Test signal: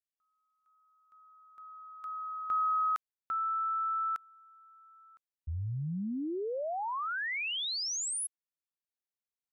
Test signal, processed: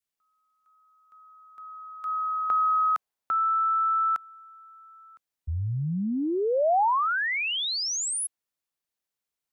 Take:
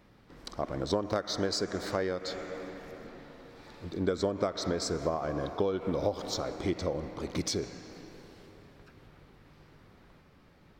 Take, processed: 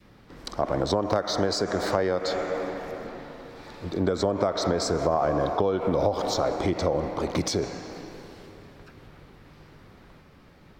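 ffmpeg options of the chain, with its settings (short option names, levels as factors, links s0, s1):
-filter_complex "[0:a]acrossover=split=190[s0][s1];[s1]acompressor=threshold=0.0224:ratio=4:attack=6.1:release=84:knee=2.83:detection=peak[s2];[s0][s2]amix=inputs=2:normalize=0,adynamicequalizer=threshold=0.00282:dfrequency=760:dqfactor=0.89:tfrequency=760:tqfactor=0.89:attack=5:release=100:ratio=0.375:range=4:mode=boostabove:tftype=bell,volume=2.11"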